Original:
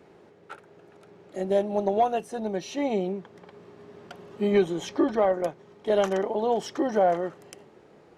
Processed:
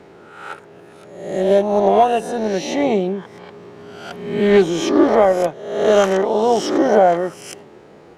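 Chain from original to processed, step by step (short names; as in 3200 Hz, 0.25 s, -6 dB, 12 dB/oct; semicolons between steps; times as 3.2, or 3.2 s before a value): spectral swells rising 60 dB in 0.81 s; Doppler distortion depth 0.11 ms; gain +8 dB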